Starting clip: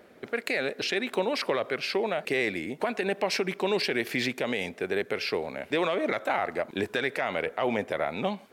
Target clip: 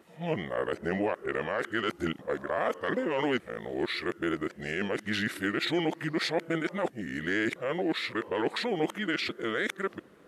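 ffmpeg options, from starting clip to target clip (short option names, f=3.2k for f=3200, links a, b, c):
-af "areverse,asetrate=36603,aresample=44100,volume=-2dB"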